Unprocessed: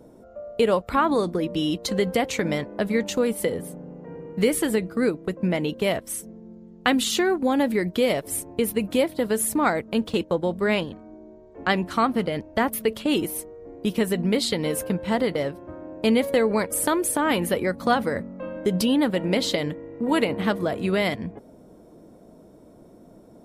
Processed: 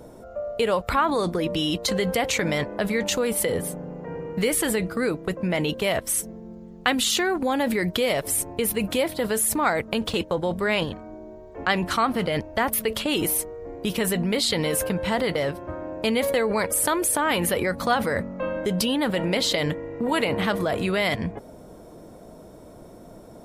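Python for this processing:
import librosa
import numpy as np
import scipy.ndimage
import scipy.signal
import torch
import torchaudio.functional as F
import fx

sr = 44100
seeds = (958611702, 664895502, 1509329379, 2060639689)

p1 = fx.peak_eq(x, sr, hz=260.0, db=-7.5, octaves=1.9)
p2 = fx.over_compress(p1, sr, threshold_db=-33.0, ratio=-1.0)
y = p1 + F.gain(torch.from_numpy(p2), 0.5).numpy()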